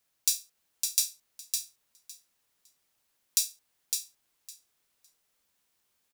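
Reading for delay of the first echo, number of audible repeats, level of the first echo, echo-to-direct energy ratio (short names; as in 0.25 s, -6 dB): 0.558 s, 2, -5.0 dB, -5.0 dB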